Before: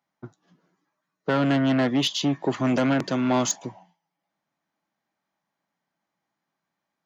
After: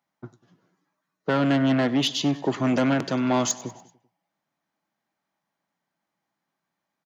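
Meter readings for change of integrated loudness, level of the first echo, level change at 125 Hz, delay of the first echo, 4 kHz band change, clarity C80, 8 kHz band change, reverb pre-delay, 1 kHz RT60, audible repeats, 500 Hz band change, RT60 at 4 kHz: 0.0 dB, −19.0 dB, 0.0 dB, 97 ms, 0.0 dB, no reverb audible, can't be measured, no reverb audible, no reverb audible, 3, 0.0 dB, no reverb audible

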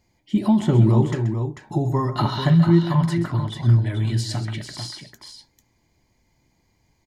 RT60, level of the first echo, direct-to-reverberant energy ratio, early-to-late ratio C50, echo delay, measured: no reverb audible, −12.5 dB, no reverb audible, no reverb audible, 131 ms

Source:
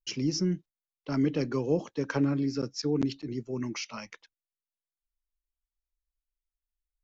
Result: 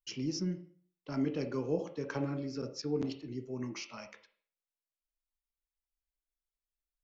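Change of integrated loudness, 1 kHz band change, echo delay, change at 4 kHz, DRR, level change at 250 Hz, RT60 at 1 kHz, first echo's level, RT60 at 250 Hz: −6.5 dB, −5.5 dB, no echo audible, −7.0 dB, 5.0 dB, −7.0 dB, 0.50 s, no echo audible, 0.45 s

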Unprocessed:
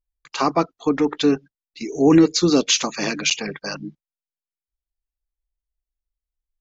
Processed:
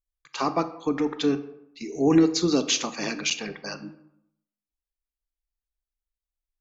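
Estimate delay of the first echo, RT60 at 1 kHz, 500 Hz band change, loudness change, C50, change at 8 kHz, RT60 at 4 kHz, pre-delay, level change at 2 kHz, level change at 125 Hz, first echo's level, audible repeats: no echo audible, 0.75 s, −5.5 dB, −5.5 dB, 13.5 dB, can't be measured, 0.45 s, 24 ms, −5.5 dB, −5.5 dB, no echo audible, no echo audible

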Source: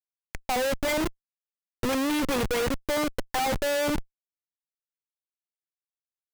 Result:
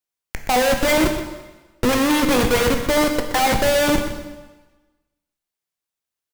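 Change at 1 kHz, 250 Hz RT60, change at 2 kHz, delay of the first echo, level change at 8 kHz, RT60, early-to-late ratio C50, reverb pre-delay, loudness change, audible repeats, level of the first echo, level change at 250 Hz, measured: +9.5 dB, 1.2 s, +9.5 dB, 124 ms, +9.5 dB, 1.2 s, 6.5 dB, 7 ms, +9.0 dB, 1, −11.5 dB, +9.0 dB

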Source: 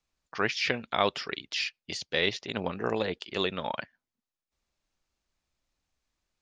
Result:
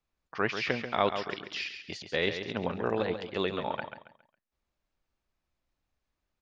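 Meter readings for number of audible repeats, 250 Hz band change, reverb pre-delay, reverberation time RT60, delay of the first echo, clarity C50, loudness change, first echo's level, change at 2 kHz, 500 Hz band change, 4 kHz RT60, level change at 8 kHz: 3, +0.5 dB, no reverb audible, no reverb audible, 137 ms, no reverb audible, −1.5 dB, −8.5 dB, −2.0 dB, +0.5 dB, no reverb audible, can't be measured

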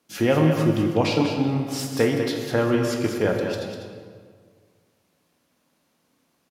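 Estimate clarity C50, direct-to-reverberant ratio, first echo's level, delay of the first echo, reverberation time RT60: 2.5 dB, 1.0 dB, −8.0 dB, 198 ms, 1.8 s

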